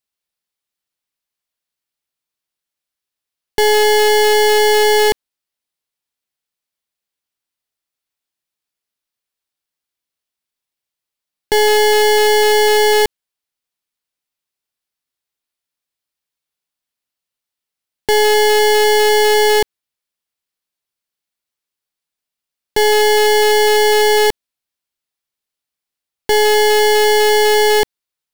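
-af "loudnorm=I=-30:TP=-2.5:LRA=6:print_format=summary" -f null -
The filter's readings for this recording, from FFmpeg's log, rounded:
Input Integrated:    -12.4 LUFS
Input True Peak:      -7.4 dBTP
Input LRA:             8.1 LU
Input Threshold:     -22.6 LUFS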